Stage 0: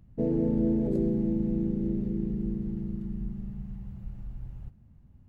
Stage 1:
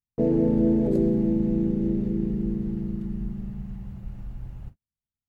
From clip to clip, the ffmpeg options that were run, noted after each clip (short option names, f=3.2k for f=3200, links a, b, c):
-af "agate=range=-46dB:threshold=-42dB:ratio=16:detection=peak,lowshelf=f=280:g=-5,volume=7.5dB"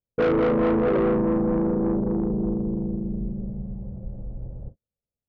-af "lowpass=f=530:t=q:w=4.9,asoftclip=type=tanh:threshold=-20dB,volume=2dB"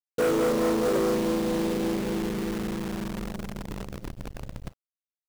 -filter_complex "[0:a]acrossover=split=240[a][b];[a]alimiter=level_in=5dB:limit=-24dB:level=0:latency=1:release=55,volume=-5dB[c];[c][b]amix=inputs=2:normalize=0,acrusher=bits=6:dc=4:mix=0:aa=0.000001,volume=-2.5dB"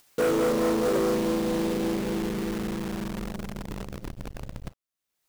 -af "acompressor=mode=upward:threshold=-34dB:ratio=2.5"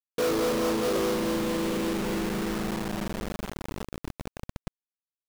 -af "acrusher=bits=4:mix=0:aa=0.000001,volume=-2dB"